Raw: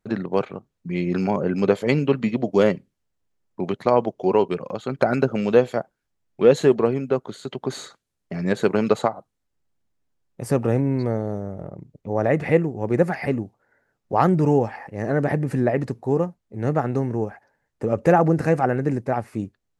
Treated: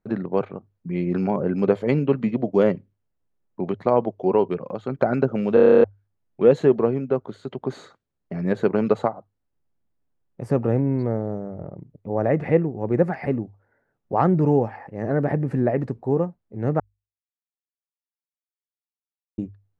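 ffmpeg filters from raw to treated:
-filter_complex "[0:a]asplit=13[s0][s1][s2][s3][s4][s5][s6][s7][s8][s9][s10][s11][s12];[s0]atrim=end=5.572[s13];[s1]atrim=start=5.538:end=5.572[s14];[s2]atrim=start=5.538:end=5.572[s15];[s3]atrim=start=5.538:end=5.572[s16];[s4]atrim=start=5.538:end=5.572[s17];[s5]atrim=start=5.538:end=5.572[s18];[s6]atrim=start=5.538:end=5.572[s19];[s7]atrim=start=5.538:end=5.572[s20];[s8]atrim=start=5.538:end=5.572[s21];[s9]atrim=start=5.538:end=5.572[s22];[s10]atrim=start=5.838:end=16.8,asetpts=PTS-STARTPTS,afade=t=out:st=10.958:d=0.004:c=hsin[s23];[s11]atrim=start=16.8:end=19.38,asetpts=PTS-STARTPTS,volume=0[s24];[s12]atrim=start=19.38,asetpts=PTS-STARTPTS,afade=t=in:d=0.004:c=hsin[s25];[s13][s14]acrossfade=d=0.004:c1=hsin:c2=hsin[s26];[s26][s15]acrossfade=d=0.004:c1=hsin:c2=hsin[s27];[s27][s16]acrossfade=d=0.004:c1=hsin:c2=hsin[s28];[s28][s17]acrossfade=d=0.004:c1=hsin:c2=hsin[s29];[s29][s18]acrossfade=d=0.004:c1=hsin:c2=hsin[s30];[s30][s19]acrossfade=d=0.004:c1=hsin:c2=hsin[s31];[s31][s20]acrossfade=d=0.004:c1=hsin:c2=hsin[s32];[s32][s21]acrossfade=d=0.004:c1=hsin:c2=hsin[s33];[s33][s22]acrossfade=d=0.004:c1=hsin:c2=hsin[s34];[s23][s24][s25]concat=n=3:v=0:a=1[s35];[s34][s35]acrossfade=d=0.004:c1=hsin:c2=hsin,lowpass=f=1200:p=1,bandreject=f=50:t=h:w=6,bandreject=f=100:t=h:w=6"

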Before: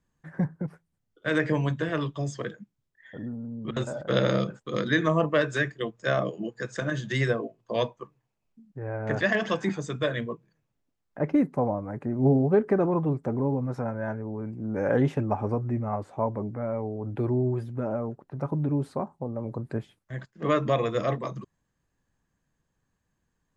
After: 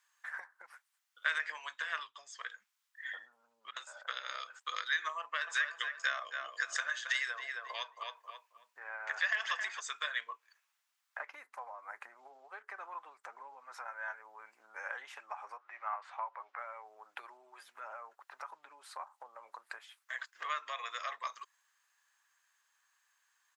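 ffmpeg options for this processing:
-filter_complex "[0:a]asettb=1/sr,asplit=3[s0][s1][s2];[s0]atrim=end=1.984[s3];[s1]atrim=start=1.98:end=4.23,asetpts=PTS-STARTPTS,afade=t=in:d=0.004:c=qsin,afade=t=out:st=2.246:d=0.004:c=qsin,equalizer=f=130:t=o:w=0.77:g=14[s4];[s2]atrim=start=4.226[s5];[s3][s4]acrossfade=d=0.004:c1=hsin:c2=qsin[s6];[s6][s5]acrossfade=d=0.004:c1=qsin:c2=hsin,asplit=3[s7][s8][s9];[s7]afade=t=out:st=5.46:d=0.02[s10];[s8]asplit=2[s11][s12];[s12]adelay=269,lowpass=f=2800:p=1,volume=0.355,asplit=2[s13][s14];[s14]adelay=269,lowpass=f=2800:p=1,volume=0.24,asplit=2[s15][s16];[s16]adelay=269,lowpass=f=2800:p=1,volume=0.24[s17];[s11][s13][s15][s17]amix=inputs=4:normalize=0,afade=t=in:st=5.46:d=0.02,afade=t=out:st=9.79:d=0.02[s18];[s9]afade=t=in:st=9.79:d=0.02[s19];[s10][s18][s19]amix=inputs=3:normalize=0,asettb=1/sr,asplit=3[s20][s21][s22];[s20]atrim=end=15.574[s23];[s21]atrim=start=15.57:end=16.59,asetpts=PTS-STARTPTS,afade=t=in:d=0.004:c=qsin,afade=t=out:st=1.016:d=0.004:c=qsin,highpass=640,lowpass=3400[s24];[s22]atrim=start=16.586[s25];[s23][s24]acrossfade=d=0.004:c1=hsin:c2=qsin[s26];[s26][s25]acrossfade=d=0.004:c1=qsin:c2=hsin,acompressor=threshold=0.0158:ratio=6,highpass=f=1100:w=0.5412,highpass=f=1100:w=1.3066,volume=2.99"

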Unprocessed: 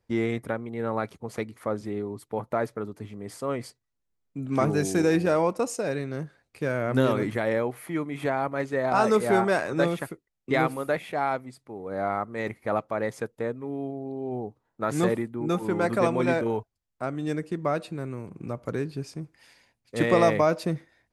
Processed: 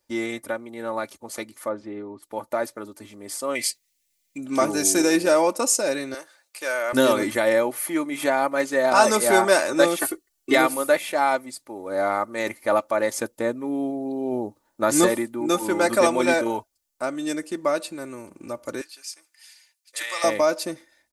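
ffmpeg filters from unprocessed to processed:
-filter_complex "[0:a]asplit=3[s0][s1][s2];[s0]afade=t=out:st=1.68:d=0.02[s3];[s1]lowpass=2200,afade=t=in:st=1.68:d=0.02,afade=t=out:st=2.22:d=0.02[s4];[s2]afade=t=in:st=2.22:d=0.02[s5];[s3][s4][s5]amix=inputs=3:normalize=0,asettb=1/sr,asplit=3[s6][s7][s8];[s6]atrim=end=3.554[s9];[s7]atrim=start=3.55:end=4.38,asetpts=PTS-STARTPTS,afade=t=in:d=0.004:c=qsin,afade=t=out:st=0.826:d=0.004:c=qsin,highshelf=f=1700:t=q:w=3:g=8[s10];[s8]atrim=start=4.376[s11];[s9][s10]acrossfade=d=0.004:c1=hsin:c2=qsin[s12];[s12][s11]acrossfade=d=0.004:c1=qsin:c2=hsin,asettb=1/sr,asplit=3[s13][s14][s15];[s13]atrim=end=6.144[s16];[s14]atrim=start=6.14:end=6.93,asetpts=PTS-STARTPTS,afade=t=in:d=0.004:c=qsin,afade=t=out:st=0.786:d=0.004:c=qsin,highpass=670[s17];[s15]atrim=start=6.926[s18];[s16][s17]acrossfade=d=0.004:c1=hsin:c2=qsin[s19];[s19][s18]acrossfade=d=0.004:c1=qsin:c2=hsin,asettb=1/sr,asplit=3[s20][s21][s22];[s20]atrim=end=9.994[s23];[s21]atrim=start=9.99:end=10.55,asetpts=PTS-STARTPTS,afade=t=in:d=0.004:c=qsin,afade=t=out:st=0.556:d=0.004:c=qsin,aecho=1:1:2.7:0.98,atrim=end_sample=24696[s24];[s22]atrim=start=10.546[s25];[s23][s24]acrossfade=d=0.004:c1=hsin:c2=qsin[s26];[s26][s25]acrossfade=d=0.004:c1=qsin:c2=hsin,asettb=1/sr,asplit=3[s27][s28][s29];[s27]atrim=end=13.144[s30];[s28]atrim=start=13.14:end=15.06,asetpts=PTS-STARTPTS,afade=t=in:d=0.004:c=qsin,afade=t=out:st=1.916:d=0.004:c=qsin,equalizer=f=120:t=o:w=2.9:g=6[s31];[s29]atrim=start=15.056[s32];[s30][s31]acrossfade=d=0.004:c1=hsin:c2=qsin[s33];[s33][s32]acrossfade=d=0.004:c1=qsin:c2=hsin,asettb=1/sr,asplit=3[s34][s35][s36];[s34]atrim=end=18.814[s37];[s35]atrim=start=18.81:end=20.24,asetpts=PTS-STARTPTS,afade=t=in:d=0.004:c=qsin,afade=t=out:st=1.426:d=0.004:c=qsin,highpass=1500[s38];[s36]atrim=start=20.236[s39];[s37][s38]acrossfade=d=0.004:c1=hsin:c2=qsin[s40];[s40][s39]acrossfade=d=0.004:c1=qsin:c2=hsin,bass=f=250:g=-11,treble=f=4000:g=12,aecho=1:1:3.4:0.59,dynaudnorm=f=730:g=13:m=2.51"

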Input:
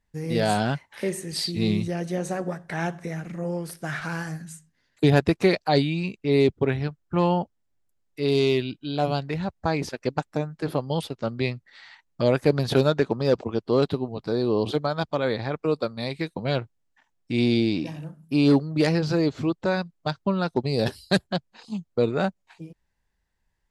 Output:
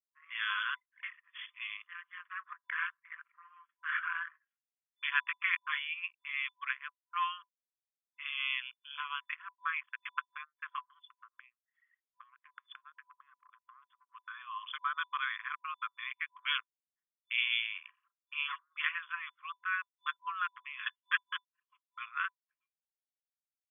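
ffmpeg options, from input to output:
-filter_complex "[0:a]asettb=1/sr,asplit=3[s0][s1][s2];[s0]atrim=end=10.834[s3];[s1]atrim=start=10.83:end=14.09,asetpts=PTS-STARTPTS,afade=t=in:d=0.004:c=qsin,afade=t=out:st=3.256:d=0.004:c=qsin,acompressor=threshold=0.0282:ratio=16:attack=3.2:release=140:knee=1:detection=peak[s4];[s2]atrim=start=14.086[s5];[s3][s4]acrossfade=d=0.004:c1=hsin:c2=qsin[s6];[s6][s5]acrossfade=d=0.004:c1=qsin:c2=hsin,asettb=1/sr,asplit=3[s7][s8][s9];[s7]atrim=end=16.324[s10];[s8]atrim=start=16.32:end=17.67,asetpts=PTS-STARTPTS,afade=t=in:d=0.004:c=qsin,afade=t=out:st=1.346:d=0.004:c=qsin,highshelf=f=4400:t=q:w=3:g=-10[s11];[s9]atrim=start=17.666[s12];[s10][s11]acrossfade=d=0.004:c1=hsin:c2=qsin[s13];[s13][s12]acrossfade=d=0.004:c1=qsin:c2=hsin,anlmdn=15.8,afftfilt=real='re*between(b*sr/4096,1000,3500)':imag='im*between(b*sr/4096,1000,3500)':win_size=4096:overlap=0.75"

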